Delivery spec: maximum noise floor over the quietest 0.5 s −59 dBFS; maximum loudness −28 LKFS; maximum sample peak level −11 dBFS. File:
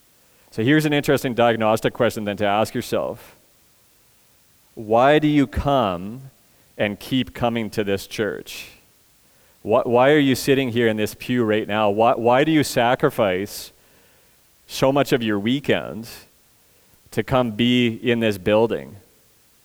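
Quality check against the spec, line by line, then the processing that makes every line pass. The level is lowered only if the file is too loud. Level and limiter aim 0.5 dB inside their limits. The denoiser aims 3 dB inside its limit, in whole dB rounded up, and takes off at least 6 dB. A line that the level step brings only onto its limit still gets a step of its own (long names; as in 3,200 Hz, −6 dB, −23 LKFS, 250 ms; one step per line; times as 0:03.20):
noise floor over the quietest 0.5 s −57 dBFS: out of spec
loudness −20.0 LKFS: out of spec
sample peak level −5.0 dBFS: out of spec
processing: level −8.5 dB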